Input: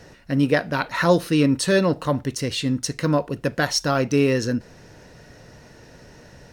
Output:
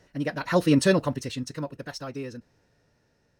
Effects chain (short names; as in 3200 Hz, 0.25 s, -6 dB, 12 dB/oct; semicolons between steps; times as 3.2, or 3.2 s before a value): Doppler pass-by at 1.56, 8 m/s, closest 3.6 m; time stretch by phase-locked vocoder 0.52×